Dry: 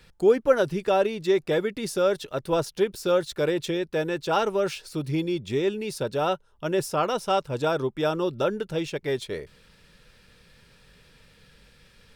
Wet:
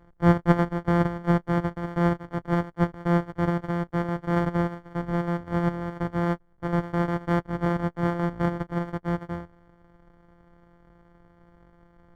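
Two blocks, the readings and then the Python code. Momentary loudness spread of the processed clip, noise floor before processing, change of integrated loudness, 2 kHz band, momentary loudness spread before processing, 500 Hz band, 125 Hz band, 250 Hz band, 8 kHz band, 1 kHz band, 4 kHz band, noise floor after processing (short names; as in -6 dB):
7 LU, -58 dBFS, -0.5 dB, -0.5 dB, 7 LU, -7.0 dB, +9.5 dB, +4.5 dB, under -15 dB, -0.5 dB, -13.0 dB, -59 dBFS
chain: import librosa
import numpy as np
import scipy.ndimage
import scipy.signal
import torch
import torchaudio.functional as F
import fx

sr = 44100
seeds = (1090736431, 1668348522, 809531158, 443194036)

y = np.r_[np.sort(x[:len(x) // 256 * 256].reshape(-1, 256), axis=1).ravel(), x[len(x) // 256 * 256:]]
y = scipy.signal.savgol_filter(y, 41, 4, mode='constant')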